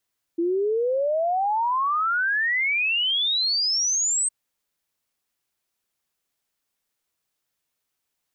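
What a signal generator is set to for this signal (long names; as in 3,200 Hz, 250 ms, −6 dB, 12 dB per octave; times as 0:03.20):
exponential sine sweep 330 Hz → 8,400 Hz 3.91 s −20 dBFS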